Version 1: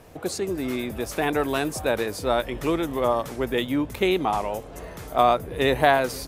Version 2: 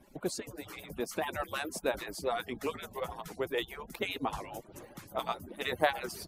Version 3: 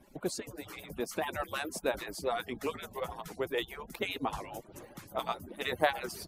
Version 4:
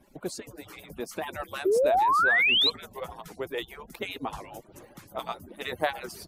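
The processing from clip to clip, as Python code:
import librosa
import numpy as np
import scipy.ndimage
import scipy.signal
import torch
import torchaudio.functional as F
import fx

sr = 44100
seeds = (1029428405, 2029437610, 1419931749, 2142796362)

y1 = fx.hpss_only(x, sr, part='percussive')
y1 = fx.low_shelf(y1, sr, hz=300.0, db=5.0)
y1 = y1 * 10.0 ** (-7.0 / 20.0)
y2 = y1
y3 = fx.spec_paint(y2, sr, seeds[0], shape='rise', start_s=1.65, length_s=1.05, low_hz=360.0, high_hz=4200.0, level_db=-22.0)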